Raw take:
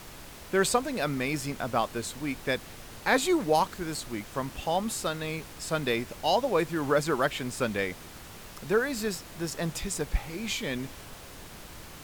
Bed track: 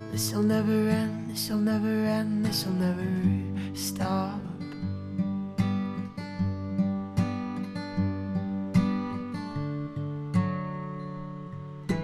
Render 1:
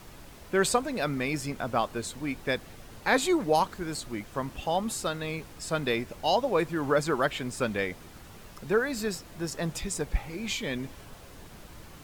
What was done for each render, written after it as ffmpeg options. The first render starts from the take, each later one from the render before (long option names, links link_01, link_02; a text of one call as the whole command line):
ffmpeg -i in.wav -af "afftdn=noise_reduction=6:noise_floor=-46" out.wav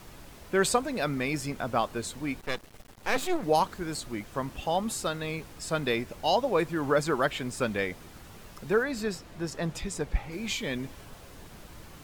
ffmpeg -i in.wav -filter_complex "[0:a]asettb=1/sr,asplit=3[link_01][link_02][link_03];[link_01]atrim=end=2.414[link_04];[link_02]atrim=start=2.41:end=3.43,asetpts=PTS-STARTPTS,afade=type=in:duration=0.004:curve=qsin,afade=type=out:start_time=1.016:duration=0.004:curve=qsin,aeval=exprs='max(val(0),0)':channel_layout=same[link_05];[link_03]atrim=start=3.426[link_06];[link_04][link_05]acrossfade=duration=0.004:curve1=hsin:curve2=qsin[link_07];[link_07][link_06]acrossfade=duration=0.004:curve1=qsin:curve2=hsin,asettb=1/sr,asplit=3[link_08][link_09][link_10];[link_08]atrim=end=8.834[link_11];[link_09]atrim=start=8.83:end=10.32,asetpts=PTS-STARTPTS,afade=type=in:duration=0.004:curve=qsin,afade=type=out:start_time=1.486:duration=0.004:curve=qsin,highshelf=frequency=7000:gain=-8.5[link_12];[link_10]atrim=start=10.316[link_13];[link_11][link_12]acrossfade=duration=0.004:curve1=hsin:curve2=qsin[link_14];[link_14][link_13]acrossfade=duration=0.004:curve1=qsin:curve2=hsin" out.wav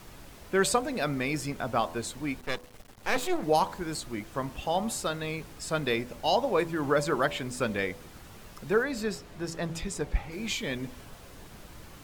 ffmpeg -i in.wav -af "bandreject=frequency=82.59:width_type=h:width=4,bandreject=frequency=165.18:width_type=h:width=4,bandreject=frequency=247.77:width_type=h:width=4,bandreject=frequency=330.36:width_type=h:width=4,bandreject=frequency=412.95:width_type=h:width=4,bandreject=frequency=495.54:width_type=h:width=4,bandreject=frequency=578.13:width_type=h:width=4,bandreject=frequency=660.72:width_type=h:width=4,bandreject=frequency=743.31:width_type=h:width=4,bandreject=frequency=825.9:width_type=h:width=4,bandreject=frequency=908.49:width_type=h:width=4,bandreject=frequency=991.08:width_type=h:width=4,bandreject=frequency=1073.67:width_type=h:width=4" out.wav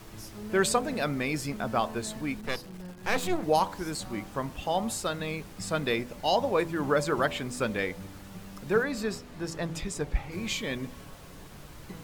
ffmpeg -i in.wav -i bed.wav -filter_complex "[1:a]volume=-16.5dB[link_01];[0:a][link_01]amix=inputs=2:normalize=0" out.wav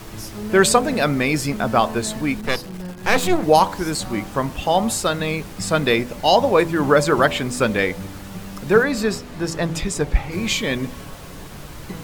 ffmpeg -i in.wav -af "volume=10.5dB" out.wav